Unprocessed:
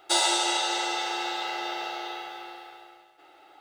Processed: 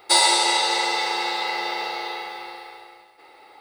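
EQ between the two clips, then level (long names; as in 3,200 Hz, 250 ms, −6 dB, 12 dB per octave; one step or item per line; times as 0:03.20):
EQ curve with evenly spaced ripples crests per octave 0.92, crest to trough 10 dB
+5.5 dB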